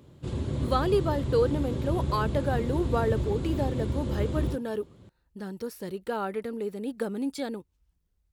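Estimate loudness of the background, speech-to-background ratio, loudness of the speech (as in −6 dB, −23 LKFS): −31.5 LKFS, 1.0 dB, −30.5 LKFS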